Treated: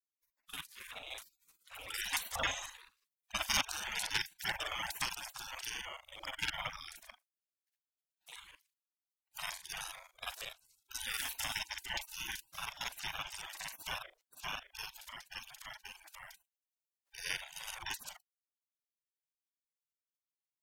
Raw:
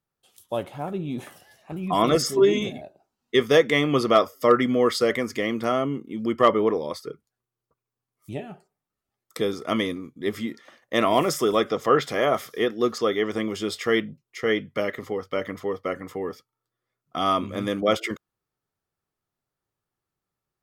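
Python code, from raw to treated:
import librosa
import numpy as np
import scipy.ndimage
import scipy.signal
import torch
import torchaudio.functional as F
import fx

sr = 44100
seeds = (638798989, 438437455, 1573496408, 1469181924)

y = fx.local_reverse(x, sr, ms=38.0)
y = fx.spec_gate(y, sr, threshold_db=-30, keep='weak')
y = y * 10.0 ** (6.0 / 20.0)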